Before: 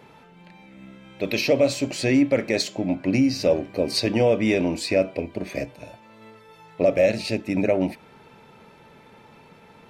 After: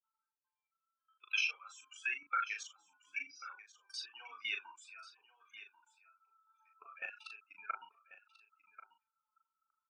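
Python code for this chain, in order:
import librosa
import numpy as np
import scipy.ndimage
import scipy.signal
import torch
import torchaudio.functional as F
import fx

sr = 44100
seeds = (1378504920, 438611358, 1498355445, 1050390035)

p1 = fx.bin_expand(x, sr, power=3.0)
p2 = fx.ladder_highpass(p1, sr, hz=1300.0, resonance_pct=80)
p3 = fx.rider(p2, sr, range_db=4, speed_s=2.0)
p4 = p2 + F.gain(torch.from_numpy(p3), -0.5).numpy()
p5 = fx.dynamic_eq(p4, sr, hz=4600.0, q=2.4, threshold_db=-56.0, ratio=4.0, max_db=6)
p6 = fx.level_steps(p5, sr, step_db=20)
p7 = fx.air_absorb(p6, sr, metres=74.0)
p8 = fx.fixed_phaser(p7, sr, hz=2900.0, stages=8)
p9 = fx.doubler(p8, sr, ms=38.0, db=-5.5)
p10 = p9 + fx.echo_single(p9, sr, ms=1089, db=-15.5, dry=0)
y = F.gain(torch.from_numpy(p10), 10.0).numpy()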